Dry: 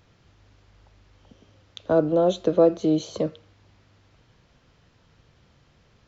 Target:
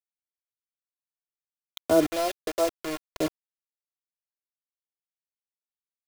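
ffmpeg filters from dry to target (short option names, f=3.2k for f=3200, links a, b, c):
-filter_complex "[0:a]asettb=1/sr,asplit=3[a][b][c];[a]atrim=end=2.064[d];[b]atrim=start=2.06:end=3.21,asetpts=PTS-STARTPTS,afade=t=in:d=0.004:c=qsin,afade=t=out:st=1.146:d=0.004:c=qsin,highpass=690,lowpass=2.9k[e];[c]atrim=start=3.206[f];[d][e]acrossfade=d=0.004:c1=hsin:c2=qsin[g];[g][f]acrossfade=d=0.004:c1=qsin:c2=hsin,acrusher=bits=4:mix=0:aa=0.000001,aecho=1:1:2.9:0.53,volume=-2dB"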